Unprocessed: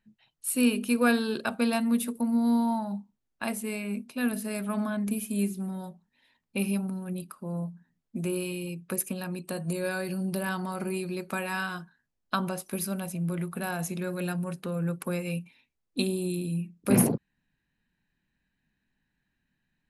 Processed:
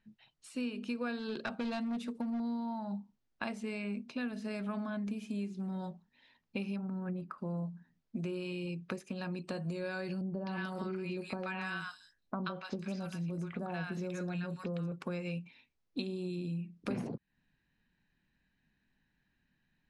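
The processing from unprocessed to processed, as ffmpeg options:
-filter_complex "[0:a]asettb=1/sr,asplit=3[a][b][c];[a]atrim=end=1.194[d];[b]atrim=start=1.19:end=2.4,asetpts=PTS-STARTPTS,afade=t=in:d=0.004:c=qsin,afade=t=out:st=1.206:d=0.004:c=qsin,asoftclip=type=hard:threshold=-24.5dB[e];[c]atrim=start=2.396[f];[d][e]acrossfade=d=0.004:c1=hsin:c2=qsin[g];[g][f]acrossfade=d=0.004:c1=qsin:c2=hsin,asettb=1/sr,asplit=3[h][i][j];[h]atrim=end=6.764[k];[i]atrim=start=6.76:end=7.38,asetpts=PTS-STARTPTS,afade=t=in:d=0.004:c=qsin,afade=t=out:st=0.616:d=0.004:c=qsin,highshelf=f=2.4k:t=q:w=1.5:g=-11.5[l];[j]atrim=start=7.376[m];[k][l]acrossfade=d=0.004:c1=hsin:c2=qsin[n];[n][m]acrossfade=d=0.004:c1=qsin:c2=hsin,asettb=1/sr,asplit=3[o][p][q];[o]atrim=end=10.214[r];[p]atrim=start=10.21:end=14.92,asetpts=PTS-STARTPTS,afade=t=in:d=0.004:c=qsin,afade=t=out:st=4.706:d=0.004:c=qsin,acrossover=split=1000|5400[s][t][u];[t]adelay=130[v];[u]adelay=310[w];[s][v][w]amix=inputs=3:normalize=0,atrim=end_sample=207711[x];[q]atrim=start=14.916[y];[r][x]acrossfade=d=0.004:c1=hsin:c2=qsin[z];[z][y]acrossfade=d=0.004:c1=qsin:c2=hsin,acompressor=threshold=-36dB:ratio=6,lowpass=f=6k:w=0.5412,lowpass=f=6k:w=1.3066,volume=1dB"

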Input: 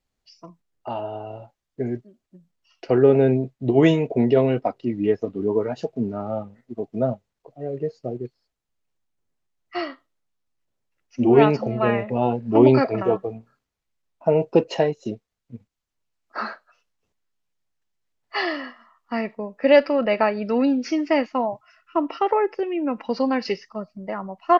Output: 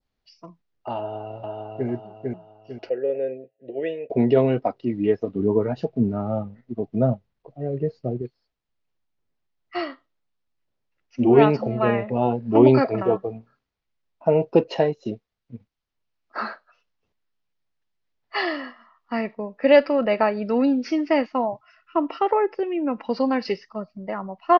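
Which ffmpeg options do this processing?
-filter_complex "[0:a]asplit=2[a][b];[b]afade=t=in:st=0.98:d=0.01,afade=t=out:st=1.88:d=0.01,aecho=0:1:450|900|1350|1800|2250:0.794328|0.317731|0.127093|0.050837|0.0203348[c];[a][c]amix=inputs=2:normalize=0,asettb=1/sr,asplit=3[d][e][f];[d]atrim=end=2.894[g];[e]atrim=start=2.89:end=4.1,asetpts=PTS-STARTPTS,afade=t=in:d=0.004:c=qsin,afade=t=out:st=1.206:d=0.004:c=qsin,asplit=3[h][i][j];[h]bandpass=f=530:t=q:w=8,volume=0dB[k];[i]bandpass=f=1.84k:t=q:w=8,volume=-6dB[l];[j]bandpass=f=2.48k:t=q:w=8,volume=-9dB[m];[k][l][m]amix=inputs=3:normalize=0[n];[f]atrim=start=4.096[o];[g][n]acrossfade=d=0.004:c1=hsin:c2=qsin[p];[p][o]acrossfade=d=0.004:c1=qsin:c2=hsin,asettb=1/sr,asplit=3[q][r][s];[q]atrim=end=5.354[t];[r]atrim=start=5.35:end=8.22,asetpts=PTS-STARTPTS,afade=t=in:d=0.004:c=qsin,afade=t=out:st=2.866:d=0.004:c=qsin,bass=f=250:g=7,treble=f=4k:g=-3[u];[s]atrim=start=8.216[v];[t][u]acrossfade=d=0.004:c1=hsin:c2=qsin[w];[w][v]acrossfade=d=0.004:c1=qsin:c2=hsin,lowpass=f=5.2k:w=0.5412,lowpass=f=5.2k:w=1.3066,adynamicequalizer=threshold=0.00891:dfrequency=2500:dqfactor=1.2:tfrequency=2500:tqfactor=1.2:attack=5:release=100:ratio=0.375:range=2:mode=cutabove:tftype=bell"

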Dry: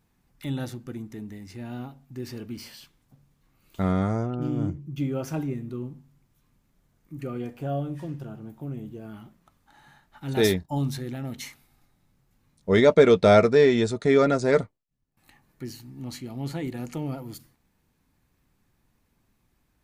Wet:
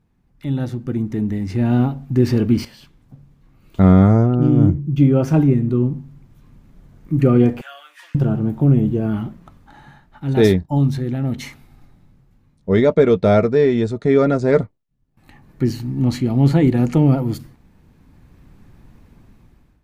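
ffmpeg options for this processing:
-filter_complex "[0:a]asettb=1/sr,asplit=3[a][b][c];[a]atrim=end=7.614[d];[b]atrim=start=7.61:end=8.15,asetpts=PTS-STARTPTS,afade=t=in:d=0.004:c=qsin,afade=t=out:st=0.536:d=0.004:c=qsin,highpass=f=1.5k:w=0.5412,highpass=f=1.5k:w=1.3066[e];[c]atrim=start=8.146[f];[d][e]acrossfade=d=0.004:c1=hsin:c2=qsin[g];[g][f]acrossfade=d=0.004:c1=qsin:c2=hsin,asplit=2[h][i];[h]atrim=end=2.65,asetpts=PTS-STARTPTS,afade=t=out:st=2.646:d=0.004:c=hsin:silence=0.237137[j];[i]atrim=start=2.65,asetpts=PTS-STARTPTS,afade=t=in:d=1.23:silence=0.237137[k];[j][k]concat=n=2:v=0:a=1,lowshelf=f=420:g=8,dynaudnorm=f=340:g=5:m=17dB,highshelf=f=5k:g=-10.5,volume=-1dB"

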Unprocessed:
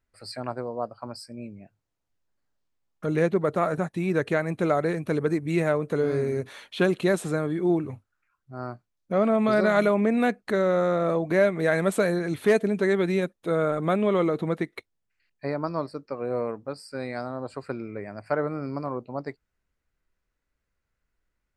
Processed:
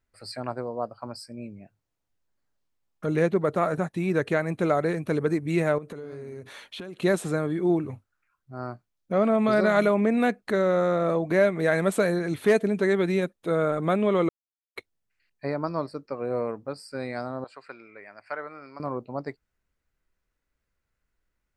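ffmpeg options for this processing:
-filter_complex "[0:a]asettb=1/sr,asplit=3[a][b][c];[a]atrim=end=5.784[d];[b]atrim=start=5.78:end=7.02,asetpts=PTS-STARTPTS,afade=t=in:d=0.004:c=qsin,afade=t=out:st=1.236:d=0.004:c=qsin,acompressor=threshold=-34dB:ratio=16:attack=3.2:release=140:knee=1:detection=peak[e];[c]atrim=start=7.016[f];[d][e]acrossfade=d=0.004:c1=hsin:c2=qsin[g];[g][f]acrossfade=d=0.004:c1=qsin:c2=hsin,asettb=1/sr,asplit=3[h][i][j];[h]atrim=end=17.444[k];[i]atrim=start=17.44:end=18.8,asetpts=PTS-STARTPTS,afade=t=in:d=0.004:c=qsin,afade=t=out:st=1.356:d=0.004:c=qsin,bandpass=f=2.4k:t=q:w=0.76[l];[j]atrim=start=18.796[m];[k][l]acrossfade=d=0.004:c1=hsin:c2=qsin[n];[n][m]acrossfade=d=0.004:c1=qsin:c2=hsin,asplit=3[o][p][q];[o]atrim=end=14.29,asetpts=PTS-STARTPTS,afade=t=out:st=14.286:d=0.004:c=hsin[r];[p]atrim=start=14.29:end=14.76,asetpts=PTS-STARTPTS,volume=0[s];[q]atrim=start=14.76,asetpts=PTS-STARTPTS,afade=t=in:d=0.004:c=hsin[t];[r][s][t]concat=n=3:v=0:a=1"

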